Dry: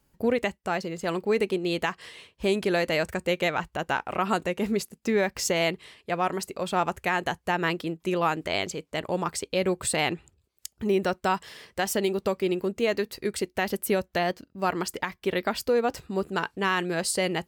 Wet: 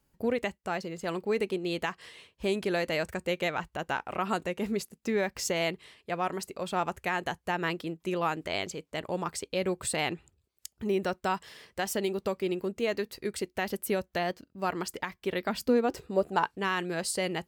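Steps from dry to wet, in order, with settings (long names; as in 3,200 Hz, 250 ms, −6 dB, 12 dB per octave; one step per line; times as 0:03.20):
0:15.48–0:16.44: parametric band 160 Hz → 930 Hz +13 dB 0.58 octaves
level −4.5 dB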